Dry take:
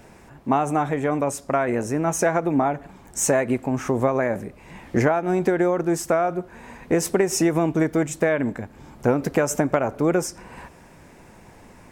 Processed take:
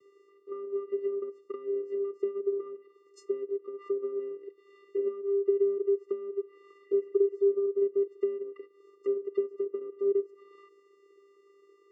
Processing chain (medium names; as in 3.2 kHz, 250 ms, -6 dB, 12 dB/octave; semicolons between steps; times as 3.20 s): low-pass that closes with the level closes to 610 Hz, closed at -18 dBFS; vocoder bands 8, square 398 Hz; spectral replace 6.84–7.66 s, 1.5–3.2 kHz both; trim -6.5 dB